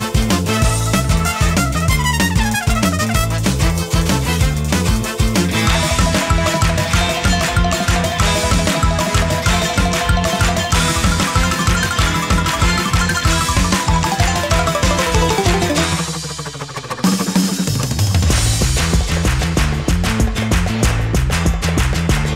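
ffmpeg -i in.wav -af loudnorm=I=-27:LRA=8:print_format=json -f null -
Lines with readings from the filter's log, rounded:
"input_i" : "-16.0",
"input_tp" : "-2.2",
"input_lra" : "1.7",
"input_thresh" : "-26.0",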